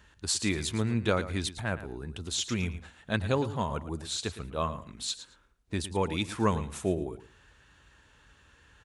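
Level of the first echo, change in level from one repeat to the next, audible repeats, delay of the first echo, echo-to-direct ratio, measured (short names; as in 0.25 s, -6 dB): -13.5 dB, -15.0 dB, 2, 0.111 s, -13.5 dB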